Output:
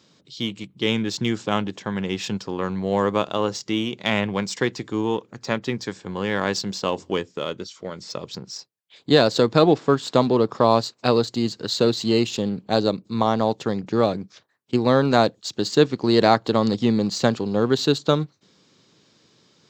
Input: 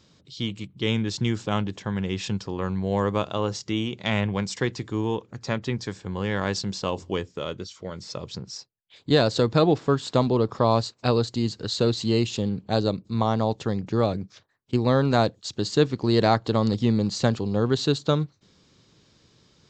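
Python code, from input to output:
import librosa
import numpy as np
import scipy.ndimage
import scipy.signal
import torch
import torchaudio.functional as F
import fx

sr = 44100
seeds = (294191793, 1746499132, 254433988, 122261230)

p1 = scipy.signal.sosfilt(scipy.signal.butter(2, 170.0, 'highpass', fs=sr, output='sos'), x)
p2 = np.sign(p1) * np.maximum(np.abs(p1) - 10.0 ** (-34.5 / 20.0), 0.0)
p3 = p1 + (p2 * librosa.db_to_amplitude(-10.0))
y = p3 * librosa.db_to_amplitude(2.0)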